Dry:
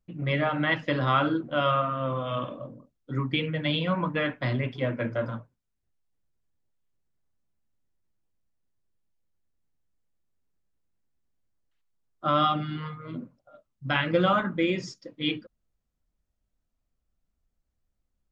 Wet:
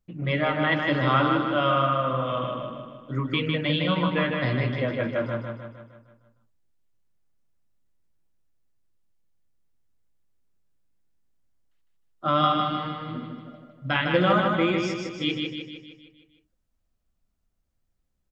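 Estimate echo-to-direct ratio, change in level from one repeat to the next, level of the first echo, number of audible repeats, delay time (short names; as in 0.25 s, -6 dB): -2.5 dB, -5.5 dB, -4.0 dB, 6, 0.154 s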